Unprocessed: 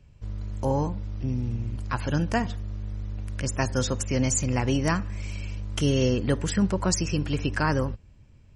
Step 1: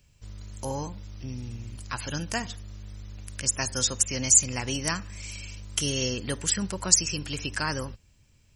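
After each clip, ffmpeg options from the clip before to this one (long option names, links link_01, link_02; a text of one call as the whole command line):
ffmpeg -i in.wav -af "crystalizer=i=7.5:c=0,volume=-8.5dB" out.wav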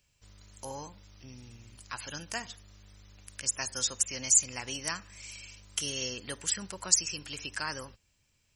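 ffmpeg -i in.wav -af "lowshelf=frequency=390:gain=-10.5,volume=-4.5dB" out.wav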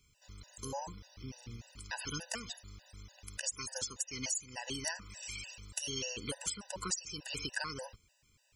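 ffmpeg -i in.wav -af "acompressor=threshold=-36dB:ratio=10,afftfilt=real='re*gt(sin(2*PI*3.4*pts/sr)*(1-2*mod(floor(b*sr/1024/500),2)),0)':imag='im*gt(sin(2*PI*3.4*pts/sr)*(1-2*mod(floor(b*sr/1024/500),2)),0)':win_size=1024:overlap=0.75,volume=5dB" out.wav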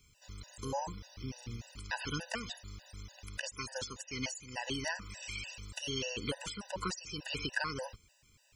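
ffmpeg -i in.wav -filter_complex "[0:a]acrossover=split=4400[link_01][link_02];[link_02]acompressor=threshold=-55dB:ratio=4:attack=1:release=60[link_03];[link_01][link_03]amix=inputs=2:normalize=0,volume=4dB" out.wav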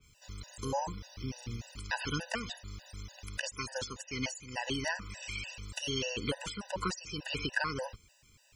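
ffmpeg -i in.wav -af "adynamicequalizer=threshold=0.00251:dfrequency=3400:dqfactor=0.7:tfrequency=3400:tqfactor=0.7:attack=5:release=100:ratio=0.375:range=2:mode=cutabove:tftype=highshelf,volume=3dB" out.wav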